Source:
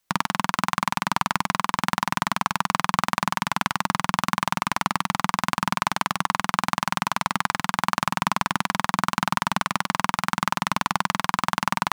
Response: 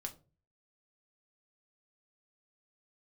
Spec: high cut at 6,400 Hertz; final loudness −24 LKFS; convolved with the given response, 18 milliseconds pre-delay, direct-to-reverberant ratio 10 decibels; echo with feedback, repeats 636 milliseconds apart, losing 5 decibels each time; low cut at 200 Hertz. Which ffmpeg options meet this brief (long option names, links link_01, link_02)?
-filter_complex "[0:a]highpass=200,lowpass=6400,aecho=1:1:636|1272|1908|2544|3180|3816|4452:0.562|0.315|0.176|0.0988|0.0553|0.031|0.0173,asplit=2[link_01][link_02];[1:a]atrim=start_sample=2205,adelay=18[link_03];[link_02][link_03]afir=irnorm=-1:irlink=0,volume=-7.5dB[link_04];[link_01][link_04]amix=inputs=2:normalize=0,volume=-1.5dB"